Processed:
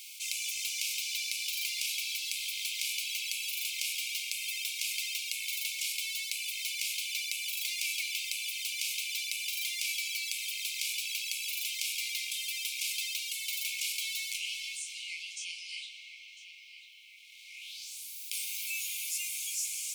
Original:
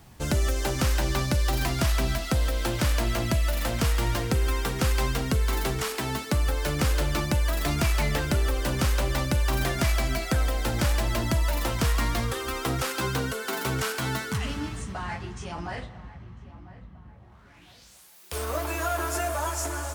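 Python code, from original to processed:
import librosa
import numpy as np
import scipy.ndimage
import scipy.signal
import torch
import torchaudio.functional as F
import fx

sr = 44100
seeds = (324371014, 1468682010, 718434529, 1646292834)

y = fx.rattle_buzz(x, sr, strikes_db=-26.0, level_db=-31.0)
y = fx.brickwall_highpass(y, sr, low_hz=2100.0)
y = y + 10.0 ** (-21.5 / 20.0) * np.pad(y, (int(120 * sr / 1000.0), 0))[:len(y)]
y = fx.env_flatten(y, sr, amount_pct=50)
y = y * 10.0 ** (-1.5 / 20.0)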